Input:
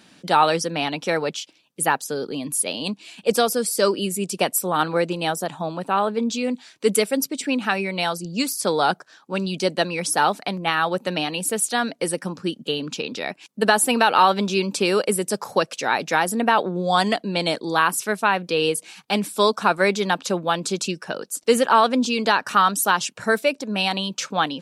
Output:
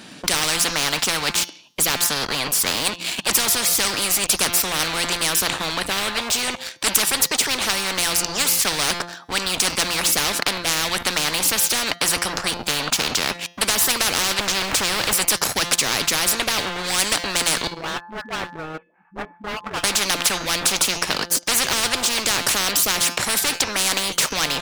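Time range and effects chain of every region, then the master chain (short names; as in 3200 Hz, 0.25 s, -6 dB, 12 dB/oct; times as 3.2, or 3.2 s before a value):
14.39–15.13 zero-crossing step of -29 dBFS + RIAA curve playback
17.67–19.84 steep low-pass 1600 Hz + resonator 870 Hz, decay 0.35 s, mix 90% + dispersion highs, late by 0.1 s, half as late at 410 Hz
whole clip: de-hum 173.5 Hz, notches 39; sample leveller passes 2; spectral compressor 10:1; gain +1 dB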